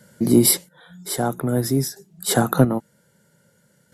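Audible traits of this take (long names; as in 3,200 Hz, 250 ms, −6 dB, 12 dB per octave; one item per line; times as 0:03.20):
chopped level 0.51 Hz, depth 60%, duty 35%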